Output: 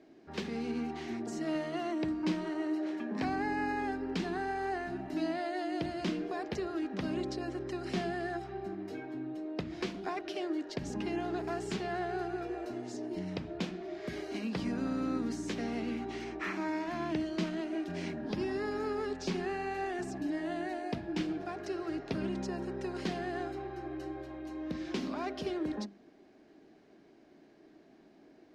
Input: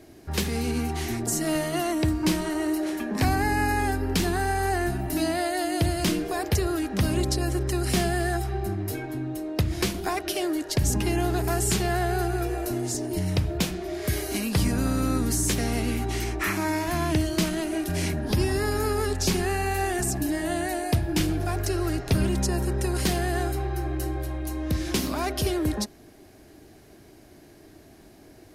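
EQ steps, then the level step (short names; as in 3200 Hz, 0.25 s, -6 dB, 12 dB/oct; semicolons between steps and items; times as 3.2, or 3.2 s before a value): air absorption 160 m; resonant low shelf 140 Hz -13.5 dB, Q 1.5; notches 50/100/150/200/250/300/350 Hz; -8.5 dB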